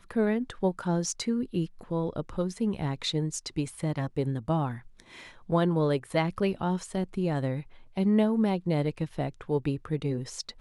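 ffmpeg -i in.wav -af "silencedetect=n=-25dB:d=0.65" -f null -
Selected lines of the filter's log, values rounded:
silence_start: 4.70
silence_end: 5.52 | silence_duration: 0.82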